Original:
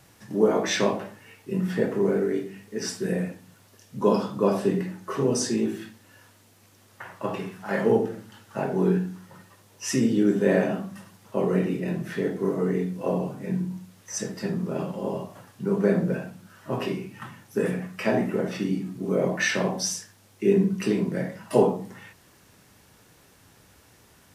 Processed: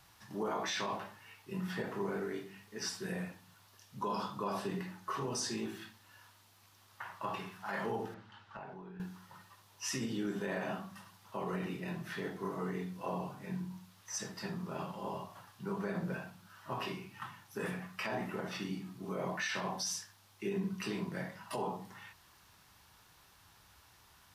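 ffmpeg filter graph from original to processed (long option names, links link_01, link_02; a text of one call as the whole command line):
ffmpeg -i in.wav -filter_complex "[0:a]asettb=1/sr,asplit=3[link_01][link_02][link_03];[link_01]atrim=end=8.144[link_04];[link_02]atrim=start=8.14:end=9,asetpts=PTS-STARTPTS,afade=type=in:duration=0.004:curve=qsin,afade=type=out:start_time=0.856:duration=0.004:curve=qsin,lowpass=3400,acompressor=threshold=-33dB:ratio=12:attack=3.2:release=140:knee=1:detection=peak[link_05];[link_03]atrim=start=8.996[link_06];[link_04][link_05]acrossfade=duration=0.004:curve1=hsin:curve2=qsin[link_07];[link_07][link_06]acrossfade=duration=0.004:curve1=qsin:curve2=hsin,equalizer=frequency=125:width_type=o:width=1:gain=-5,equalizer=frequency=250:width_type=o:width=1:gain=-9,equalizer=frequency=500:width_type=o:width=1:gain=-10,equalizer=frequency=1000:width_type=o:width=1:gain=5,equalizer=frequency=2000:width_type=o:width=1:gain=-3,equalizer=frequency=4000:width_type=o:width=1:gain=3,equalizer=frequency=8000:width_type=o:width=1:gain=-5,alimiter=limit=-23.5dB:level=0:latency=1:release=55,volume=-4dB" out.wav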